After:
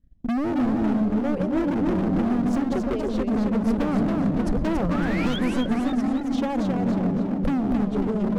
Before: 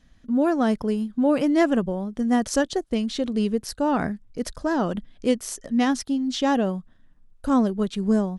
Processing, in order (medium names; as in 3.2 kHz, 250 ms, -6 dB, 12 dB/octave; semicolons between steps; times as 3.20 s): gate with hold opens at -42 dBFS; tilt shelf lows +9.5 dB, about 1.2 kHz; on a send: feedback echo behind a low-pass 150 ms, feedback 61%, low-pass 490 Hz, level -4.5 dB; on the sum: compression 12:1, threshold -18 dBFS, peak gain reduction 12.5 dB; transient shaper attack +8 dB, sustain -4 dB; painted sound rise, 4.90–5.39 s, 1.1–3.5 kHz -32 dBFS; LFO notch sine 0.59 Hz 220–2400 Hz; hard clipper -26.5 dBFS, distortion -4 dB; bass shelf 230 Hz +6 dB; modulated delay 275 ms, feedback 46%, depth 217 cents, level -4.5 dB; trim +1.5 dB